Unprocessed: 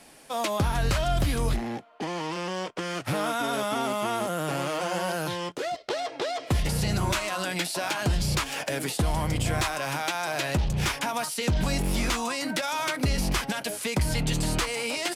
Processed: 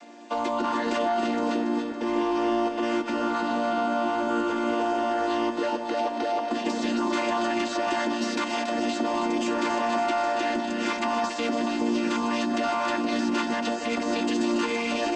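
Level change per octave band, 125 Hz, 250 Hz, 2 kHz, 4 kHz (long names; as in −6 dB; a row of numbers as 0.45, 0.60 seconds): −19.5, +6.5, 0.0, −2.5 decibels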